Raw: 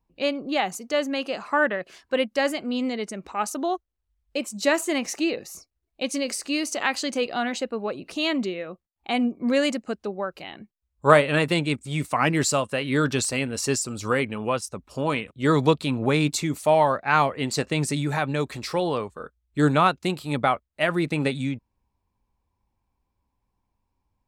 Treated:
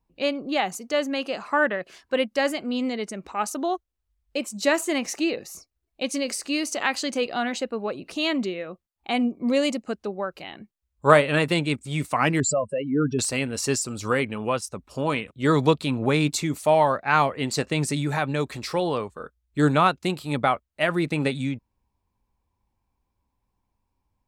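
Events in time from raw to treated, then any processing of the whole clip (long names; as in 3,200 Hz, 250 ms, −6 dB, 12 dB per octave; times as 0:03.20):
0:09.22–0:09.84: parametric band 1,600 Hz −11.5 dB 0.37 octaves
0:12.40–0:13.19: expanding power law on the bin magnitudes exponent 2.6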